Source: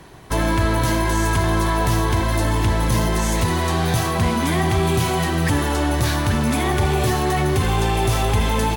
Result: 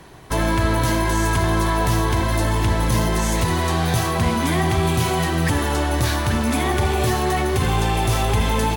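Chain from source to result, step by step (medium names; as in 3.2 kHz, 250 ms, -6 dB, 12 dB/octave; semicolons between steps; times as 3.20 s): de-hum 48.81 Hz, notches 8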